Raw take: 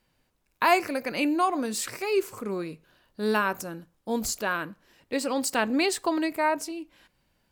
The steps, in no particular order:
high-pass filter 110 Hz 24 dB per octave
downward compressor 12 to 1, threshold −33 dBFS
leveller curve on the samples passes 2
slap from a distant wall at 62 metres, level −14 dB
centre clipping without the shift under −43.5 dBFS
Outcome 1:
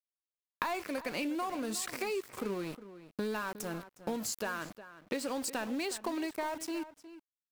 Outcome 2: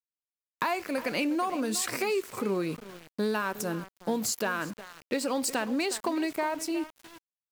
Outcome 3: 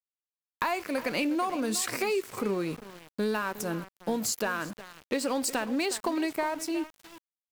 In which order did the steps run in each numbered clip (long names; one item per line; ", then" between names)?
high-pass filter, then leveller curve on the samples, then downward compressor, then centre clipping without the shift, then slap from a distant wall
downward compressor, then slap from a distant wall, then leveller curve on the samples, then high-pass filter, then centre clipping without the shift
high-pass filter, then downward compressor, then slap from a distant wall, then leveller curve on the samples, then centre clipping without the shift